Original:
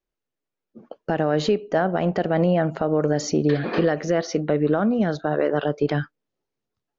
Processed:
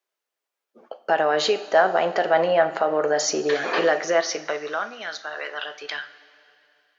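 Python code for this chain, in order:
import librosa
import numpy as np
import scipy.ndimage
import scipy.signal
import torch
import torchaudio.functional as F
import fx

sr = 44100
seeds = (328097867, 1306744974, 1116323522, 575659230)

y = fx.rev_double_slope(x, sr, seeds[0], early_s=0.36, late_s=2.8, knee_db=-15, drr_db=8.0)
y = fx.filter_sweep_highpass(y, sr, from_hz=680.0, to_hz=1900.0, start_s=4.08, end_s=5.1, q=0.77)
y = y * 10.0 ** (6.0 / 20.0)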